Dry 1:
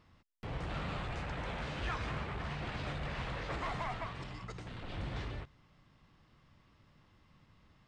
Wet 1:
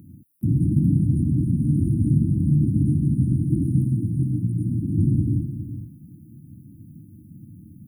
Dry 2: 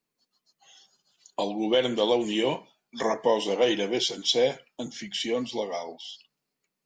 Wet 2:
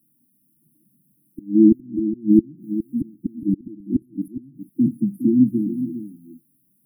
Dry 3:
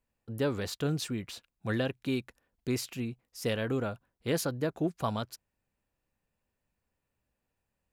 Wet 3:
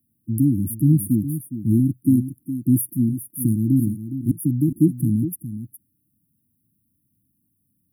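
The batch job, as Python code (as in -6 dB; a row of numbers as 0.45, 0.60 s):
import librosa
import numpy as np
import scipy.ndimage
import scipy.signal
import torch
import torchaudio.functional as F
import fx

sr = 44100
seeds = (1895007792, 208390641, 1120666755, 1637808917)

p1 = scipy.signal.sosfilt(scipy.signal.butter(4, 96.0, 'highpass', fs=sr, output='sos'), x)
p2 = fx.high_shelf(p1, sr, hz=10000.0, db=6.0)
p3 = fx.gate_flip(p2, sr, shuts_db=-16.0, range_db=-26)
p4 = fx.brickwall_bandstop(p3, sr, low_hz=340.0, high_hz=9200.0)
p5 = p4 + fx.echo_single(p4, sr, ms=413, db=-11.0, dry=0)
y = p5 * 10.0 ** (-22 / 20.0) / np.sqrt(np.mean(np.square(p5)))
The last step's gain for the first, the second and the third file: +24.5, +19.5, +16.0 dB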